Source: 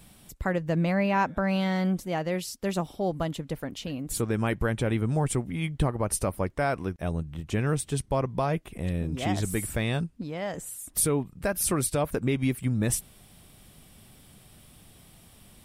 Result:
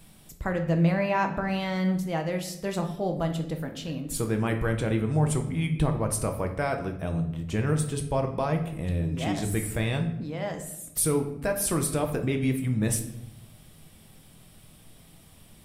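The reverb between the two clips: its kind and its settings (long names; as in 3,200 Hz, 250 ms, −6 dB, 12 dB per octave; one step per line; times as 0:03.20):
rectangular room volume 220 cubic metres, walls mixed, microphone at 0.61 metres
level −1.5 dB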